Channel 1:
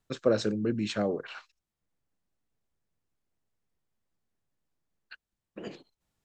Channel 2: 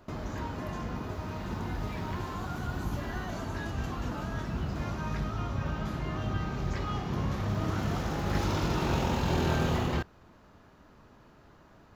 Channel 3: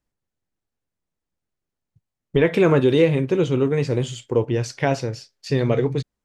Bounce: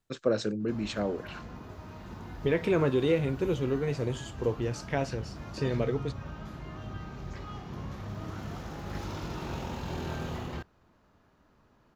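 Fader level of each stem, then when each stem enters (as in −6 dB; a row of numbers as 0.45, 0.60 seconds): −2.0, −8.0, −9.5 decibels; 0.00, 0.60, 0.10 seconds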